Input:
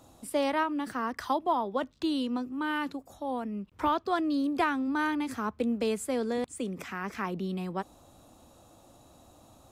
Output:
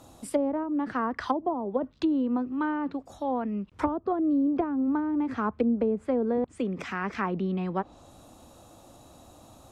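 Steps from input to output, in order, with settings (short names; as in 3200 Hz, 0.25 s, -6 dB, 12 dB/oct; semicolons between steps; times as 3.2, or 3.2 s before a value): treble ducked by the level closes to 470 Hz, closed at -24.5 dBFS; gain +4.5 dB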